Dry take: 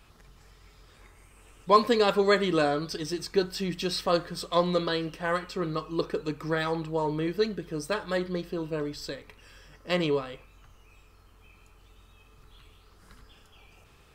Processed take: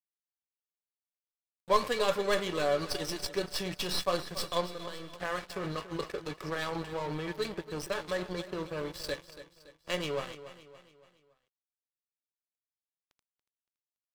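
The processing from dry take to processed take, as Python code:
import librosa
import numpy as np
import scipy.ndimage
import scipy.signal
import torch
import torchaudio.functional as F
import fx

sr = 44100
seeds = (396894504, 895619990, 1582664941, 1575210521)

p1 = fx.tracing_dist(x, sr, depth_ms=0.067)
p2 = fx.peak_eq(p1, sr, hz=250.0, db=-8.0, octaves=0.52)
p3 = fx.over_compress(p2, sr, threshold_db=-33.0, ratio=-0.5)
p4 = p2 + (p3 * librosa.db_to_amplitude(-1.5))
p5 = fx.comb_fb(p4, sr, f0_hz=570.0, decay_s=0.18, harmonics='all', damping=0.0, mix_pct=80)
p6 = np.sign(p5) * np.maximum(np.abs(p5) - 10.0 ** (-45.0 / 20.0), 0.0)
p7 = fx.comb_fb(p6, sr, f0_hz=78.0, decay_s=1.7, harmonics='all', damping=0.0, mix_pct=70, at=(4.65, 5.13), fade=0.02)
p8 = fx.echo_feedback(p7, sr, ms=283, feedback_pct=45, wet_db=-14)
y = p8 * librosa.db_to_amplitude(7.0)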